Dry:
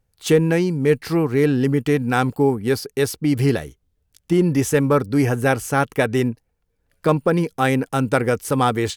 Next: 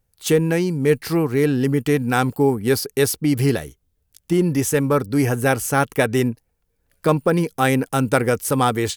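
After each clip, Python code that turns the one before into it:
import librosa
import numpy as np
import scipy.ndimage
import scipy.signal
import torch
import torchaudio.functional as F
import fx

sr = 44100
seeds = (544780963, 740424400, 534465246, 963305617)

y = fx.high_shelf(x, sr, hz=7900.0, db=9.0)
y = fx.rider(y, sr, range_db=10, speed_s=0.5)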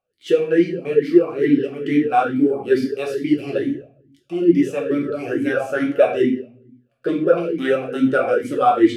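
y = fx.room_shoebox(x, sr, seeds[0], volume_m3=96.0, walls='mixed', distance_m=0.98)
y = fx.vowel_sweep(y, sr, vowels='a-i', hz=2.3)
y = y * librosa.db_to_amplitude(6.5)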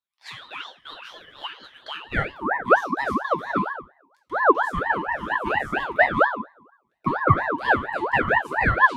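y = fx.filter_sweep_highpass(x, sr, from_hz=2100.0, to_hz=390.0, start_s=1.88, end_s=2.6, q=2.7)
y = fx.ring_lfo(y, sr, carrier_hz=1000.0, swing_pct=40, hz=4.3)
y = y * librosa.db_to_amplitude(-5.5)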